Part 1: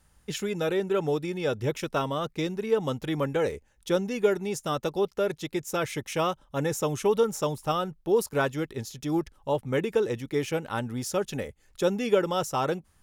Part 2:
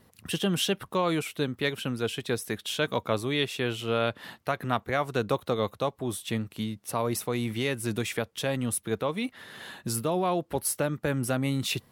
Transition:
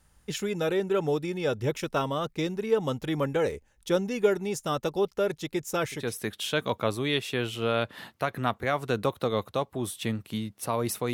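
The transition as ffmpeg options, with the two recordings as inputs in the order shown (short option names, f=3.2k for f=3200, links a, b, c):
-filter_complex "[0:a]apad=whole_dur=11.13,atrim=end=11.13,atrim=end=6.15,asetpts=PTS-STARTPTS[a];[1:a]atrim=start=2.13:end=7.39,asetpts=PTS-STARTPTS[b];[a][b]acrossfade=d=0.28:c1=tri:c2=tri"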